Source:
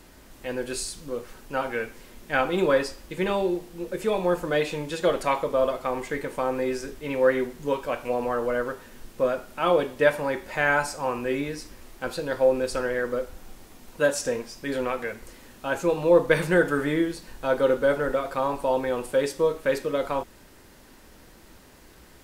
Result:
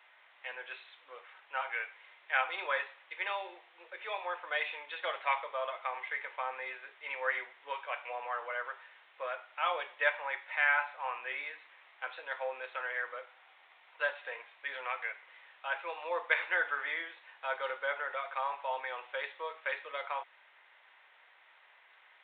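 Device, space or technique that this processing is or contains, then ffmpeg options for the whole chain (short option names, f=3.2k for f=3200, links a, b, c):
musical greeting card: -filter_complex "[0:a]aresample=8000,aresample=44100,highpass=f=750:w=0.5412,highpass=f=750:w=1.3066,equalizer=f=2.1k:t=o:w=0.49:g=7,asettb=1/sr,asplit=3[a][b][c];[a]atrim=end=10.364[d];[b]atrim=start=10.36:end=10.81,asetpts=PTS-STARTPTS,afade=t=in:d=0.004:c=qsin,afade=t=out:st=0.446:d=0.004:c=qsin,lowshelf=f=470:g=-7[e];[c]atrim=start=10.806[f];[d][e]acrossfade=d=0.004:c1=hsin:c2=qsin[g];[g][f]acrossfade=d=0.004:c1=qsin:c2=hsin,volume=-6dB"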